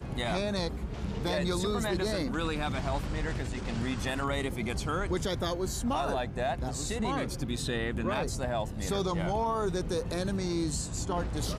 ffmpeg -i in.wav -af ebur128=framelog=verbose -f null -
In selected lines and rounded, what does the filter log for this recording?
Integrated loudness:
  I:         -31.9 LUFS
  Threshold: -41.9 LUFS
Loudness range:
  LRA:         1.0 LU
  Threshold: -51.9 LUFS
  LRA low:   -32.5 LUFS
  LRA high:  -31.5 LUFS